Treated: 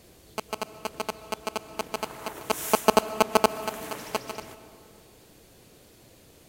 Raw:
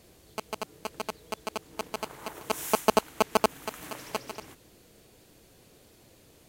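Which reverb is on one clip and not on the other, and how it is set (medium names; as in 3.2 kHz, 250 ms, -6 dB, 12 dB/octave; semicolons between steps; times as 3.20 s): algorithmic reverb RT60 2.6 s, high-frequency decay 0.45×, pre-delay 90 ms, DRR 14 dB; trim +3 dB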